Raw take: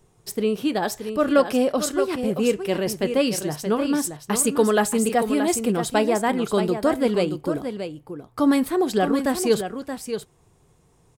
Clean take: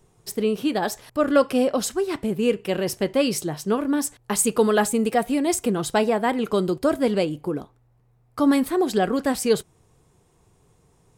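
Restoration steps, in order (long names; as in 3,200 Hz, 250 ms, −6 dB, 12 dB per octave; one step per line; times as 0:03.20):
echo removal 626 ms −8.5 dB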